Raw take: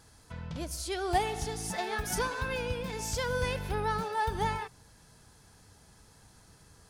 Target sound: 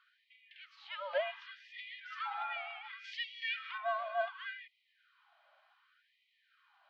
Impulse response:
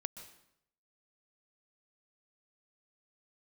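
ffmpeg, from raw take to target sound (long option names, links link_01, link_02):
-filter_complex "[0:a]highpass=frequency=490:width_type=q:width=0.5412,highpass=frequency=490:width_type=q:width=1.307,lowpass=frequency=3400:width_type=q:width=0.5176,lowpass=frequency=3400:width_type=q:width=0.7071,lowpass=frequency=3400:width_type=q:width=1.932,afreqshift=-190,asettb=1/sr,asplit=3[link_01][link_02][link_03];[link_01]atrim=end=3.044[link_04];[link_02]atrim=start=3.04:end=3.78,asetpts=PTS-STARTPTS,afade=type=in:duration=0.004:curve=qsin,afade=type=out:start_time=0.736:duration=0.004:curve=qsin,highshelf=frequency=2200:gain=10[link_05];[link_03]atrim=start=3.776[link_06];[link_04][link_05]acrossfade=duration=0.004:curve1=hsin:curve2=qsin[link_07];[link_07][link_06]acrossfade=duration=0.004:curve1=qsin:curve2=hsin,afftfilt=real='re*gte(b*sr/1024,540*pow(1900/540,0.5+0.5*sin(2*PI*0.68*pts/sr)))':imag='im*gte(b*sr/1024,540*pow(1900/540,0.5+0.5*sin(2*PI*0.68*pts/sr)))':win_size=1024:overlap=0.75,volume=-2dB"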